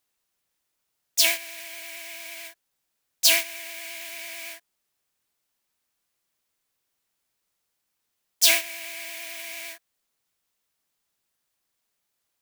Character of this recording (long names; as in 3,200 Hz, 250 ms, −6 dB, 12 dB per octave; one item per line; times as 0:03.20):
background noise floor −79 dBFS
spectral slope +0.5 dB per octave